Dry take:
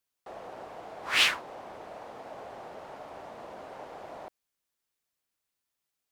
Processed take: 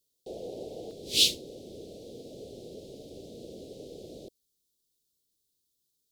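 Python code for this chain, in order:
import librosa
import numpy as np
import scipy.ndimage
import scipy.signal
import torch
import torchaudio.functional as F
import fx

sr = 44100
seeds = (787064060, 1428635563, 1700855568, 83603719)

y = scipy.signal.sosfilt(scipy.signal.ellip(3, 1.0, 80, [460.0, 3700.0], 'bandstop', fs=sr, output='sos'), x)
y = fx.peak_eq(y, sr, hz=910.0, db=fx.steps((0.0, 9.5), (0.91, -3.0)), octaves=1.6)
y = y * librosa.db_to_amplitude(7.5)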